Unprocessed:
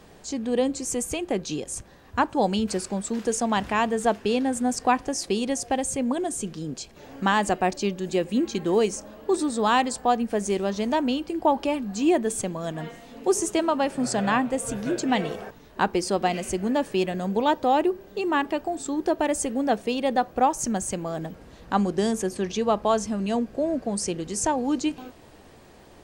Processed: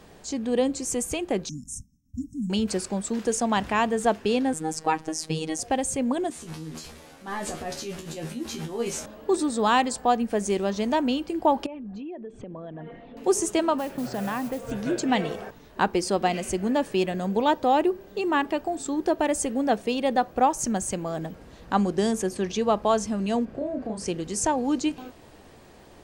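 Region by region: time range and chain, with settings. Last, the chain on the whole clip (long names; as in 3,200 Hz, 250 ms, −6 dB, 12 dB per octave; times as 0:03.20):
0:01.49–0:02.50: downward expander −44 dBFS + linear-phase brick-wall band-stop 290–5,200 Hz + high-shelf EQ 5,600 Hz −4.5 dB
0:04.53–0:05.59: parametric band 170 Hz +7 dB 0.7 octaves + phases set to zero 158 Hz
0:06.30–0:09.06: linear delta modulator 64 kbit/s, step −35.5 dBFS + transient designer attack −10 dB, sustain +9 dB + tuned comb filter 79 Hz, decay 0.21 s, mix 100%
0:11.66–0:13.17: spectral envelope exaggerated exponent 1.5 + low-pass filter 3,400 Hz 24 dB per octave + downward compressor 12 to 1, threshold −34 dBFS
0:13.78–0:14.71: high-frequency loss of the air 210 metres + downward compressor, threshold −25 dBFS + noise that follows the level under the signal 18 dB
0:23.45–0:24.06: bass and treble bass +2 dB, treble −11 dB + downward compressor 3 to 1, threshold −29 dBFS + double-tracking delay 32 ms −3 dB
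whole clip: no processing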